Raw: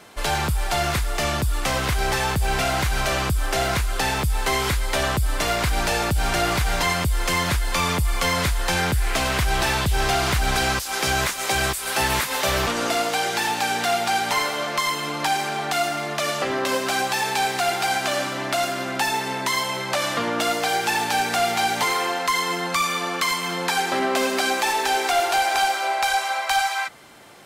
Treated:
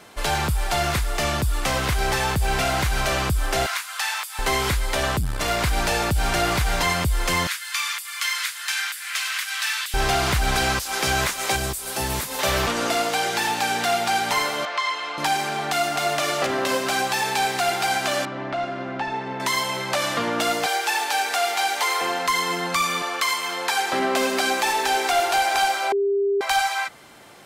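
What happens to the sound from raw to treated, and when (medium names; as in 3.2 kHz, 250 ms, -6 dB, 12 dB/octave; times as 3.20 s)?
3.66–4.39 s: high-pass 1 kHz 24 dB/octave
4.93–5.58 s: transformer saturation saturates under 110 Hz
7.47–9.94 s: high-pass 1.4 kHz 24 dB/octave
11.56–12.39 s: peaking EQ 1.8 kHz -9 dB 2.7 oct
14.65–15.18 s: band-pass 650–4100 Hz
15.69–16.20 s: echo throw 260 ms, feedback 40%, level -2.5 dB
18.25–19.40 s: tape spacing loss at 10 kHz 34 dB
20.66–22.01 s: Bessel high-pass 540 Hz, order 8
23.02–23.93 s: high-pass 450 Hz
25.92–26.41 s: bleep 399 Hz -18 dBFS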